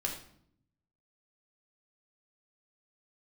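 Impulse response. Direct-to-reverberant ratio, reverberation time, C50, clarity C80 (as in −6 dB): 0.0 dB, 0.65 s, 6.5 dB, 10.0 dB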